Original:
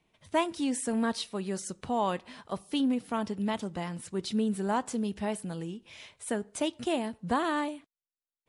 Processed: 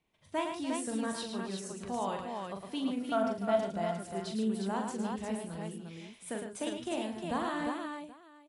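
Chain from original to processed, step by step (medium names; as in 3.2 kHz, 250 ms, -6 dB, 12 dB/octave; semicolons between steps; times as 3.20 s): 2.97–3.96 s: small resonant body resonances 670/1400 Hz, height 15 dB; on a send: multi-tap echo 41/109/146/295/355/779 ms -5.5/-6/-12/-13/-4/-19.5 dB; on the sum: trim -7.5 dB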